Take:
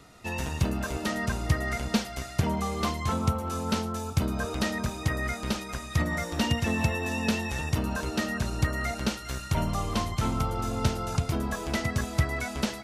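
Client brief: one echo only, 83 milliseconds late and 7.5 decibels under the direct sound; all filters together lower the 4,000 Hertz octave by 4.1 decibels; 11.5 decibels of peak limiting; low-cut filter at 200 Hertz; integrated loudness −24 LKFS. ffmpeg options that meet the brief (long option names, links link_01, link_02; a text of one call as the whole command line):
ffmpeg -i in.wav -af "highpass=200,equalizer=frequency=4000:width_type=o:gain=-5.5,alimiter=level_in=1dB:limit=-24dB:level=0:latency=1,volume=-1dB,aecho=1:1:83:0.422,volume=10.5dB" out.wav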